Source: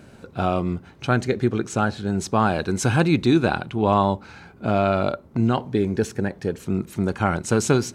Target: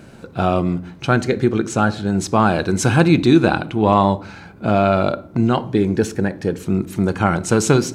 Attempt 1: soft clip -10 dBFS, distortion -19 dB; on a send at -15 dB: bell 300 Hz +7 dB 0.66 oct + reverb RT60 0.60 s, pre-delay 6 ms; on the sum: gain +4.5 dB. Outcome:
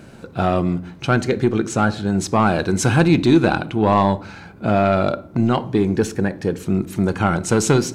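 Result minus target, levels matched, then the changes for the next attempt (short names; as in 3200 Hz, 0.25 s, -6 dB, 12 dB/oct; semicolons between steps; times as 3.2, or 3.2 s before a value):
soft clip: distortion +15 dB
change: soft clip -1 dBFS, distortion -34 dB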